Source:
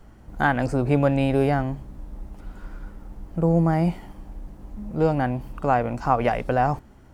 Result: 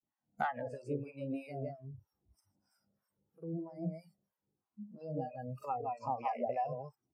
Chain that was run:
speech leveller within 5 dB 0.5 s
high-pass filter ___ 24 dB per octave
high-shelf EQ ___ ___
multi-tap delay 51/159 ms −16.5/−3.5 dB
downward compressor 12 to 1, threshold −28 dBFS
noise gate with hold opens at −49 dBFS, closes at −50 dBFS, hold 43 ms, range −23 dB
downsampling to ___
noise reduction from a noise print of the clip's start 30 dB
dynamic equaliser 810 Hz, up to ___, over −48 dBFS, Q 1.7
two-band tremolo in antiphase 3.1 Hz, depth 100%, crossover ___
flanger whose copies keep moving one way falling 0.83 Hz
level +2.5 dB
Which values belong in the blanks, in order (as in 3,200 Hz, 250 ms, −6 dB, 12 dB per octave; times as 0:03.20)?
120 Hz, 2,500 Hz, −4 dB, 32,000 Hz, +8 dB, 730 Hz